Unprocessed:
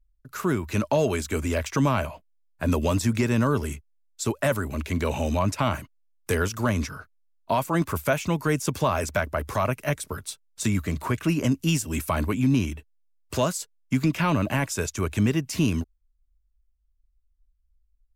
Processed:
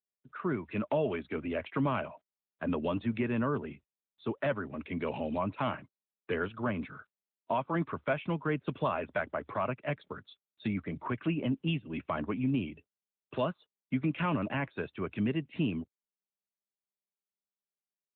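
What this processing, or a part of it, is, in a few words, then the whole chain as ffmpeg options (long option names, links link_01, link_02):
mobile call with aggressive noise cancelling: -filter_complex "[0:a]asplit=3[link_01][link_02][link_03];[link_01]afade=type=out:start_time=2.96:duration=0.02[link_04];[link_02]highpass=frequency=44:poles=1,afade=type=in:start_time=2.96:duration=0.02,afade=type=out:start_time=4.3:duration=0.02[link_05];[link_03]afade=type=in:start_time=4.3:duration=0.02[link_06];[link_04][link_05][link_06]amix=inputs=3:normalize=0,highpass=140,afftdn=noise_reduction=25:noise_floor=-44,volume=-6.5dB" -ar 8000 -c:a libopencore_amrnb -b:a 12200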